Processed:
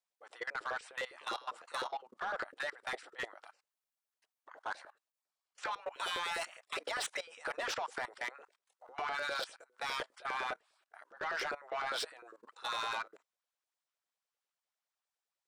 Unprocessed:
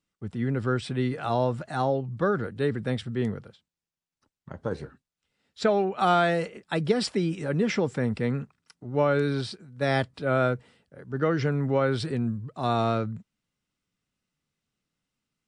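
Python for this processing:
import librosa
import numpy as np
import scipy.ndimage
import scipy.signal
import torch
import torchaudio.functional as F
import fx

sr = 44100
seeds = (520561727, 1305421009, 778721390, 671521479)

y = fx.spec_gate(x, sr, threshold_db=-15, keep='weak')
y = fx.low_shelf(y, sr, hz=180.0, db=-3.0)
y = fx.filter_lfo_highpass(y, sr, shape='saw_up', hz=9.9, low_hz=420.0, high_hz=1500.0, q=2.9)
y = fx.high_shelf(y, sr, hz=7000.0, db=10.0, at=(5.86, 6.6))
y = fx.level_steps(y, sr, step_db=20)
y = 10.0 ** (-36.0 / 20.0) * np.tanh(y / 10.0 ** (-36.0 / 20.0))
y = y * 10.0 ** (5.5 / 20.0)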